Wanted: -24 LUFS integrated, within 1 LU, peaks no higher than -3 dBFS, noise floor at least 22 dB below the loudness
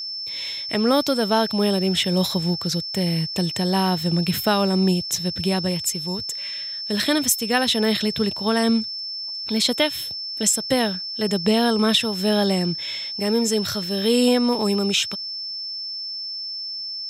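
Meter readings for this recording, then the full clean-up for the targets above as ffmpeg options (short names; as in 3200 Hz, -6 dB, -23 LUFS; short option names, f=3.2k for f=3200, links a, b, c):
steady tone 5300 Hz; tone level -28 dBFS; loudness -21.5 LUFS; peak -6.0 dBFS; loudness target -24.0 LUFS
-> -af "bandreject=f=5.3k:w=30"
-af "volume=-2.5dB"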